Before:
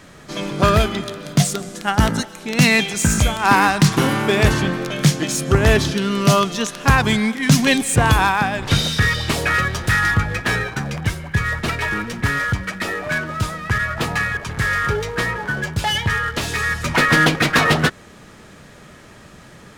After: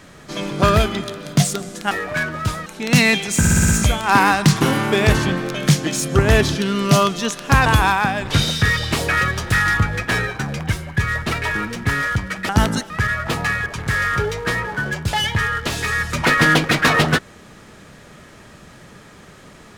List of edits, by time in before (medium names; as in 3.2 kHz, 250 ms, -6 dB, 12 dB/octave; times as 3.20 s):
1.91–2.32 s: swap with 12.86–13.61 s
3.05 s: stutter 0.06 s, 6 plays
7.02–8.03 s: delete